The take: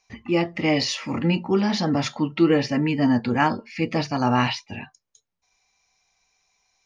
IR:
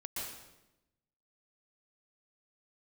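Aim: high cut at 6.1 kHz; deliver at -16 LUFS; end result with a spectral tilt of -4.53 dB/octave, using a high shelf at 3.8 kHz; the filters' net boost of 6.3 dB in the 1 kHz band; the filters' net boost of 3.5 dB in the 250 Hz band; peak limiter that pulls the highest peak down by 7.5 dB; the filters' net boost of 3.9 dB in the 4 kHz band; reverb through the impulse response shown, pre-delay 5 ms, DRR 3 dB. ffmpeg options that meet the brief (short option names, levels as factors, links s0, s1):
-filter_complex "[0:a]lowpass=6100,equalizer=f=250:t=o:g=4,equalizer=f=1000:t=o:g=7.5,highshelf=f=3800:g=-4.5,equalizer=f=4000:t=o:g=8.5,alimiter=limit=0.316:level=0:latency=1,asplit=2[s0][s1];[1:a]atrim=start_sample=2205,adelay=5[s2];[s1][s2]afir=irnorm=-1:irlink=0,volume=0.668[s3];[s0][s3]amix=inputs=2:normalize=0,volume=1.41"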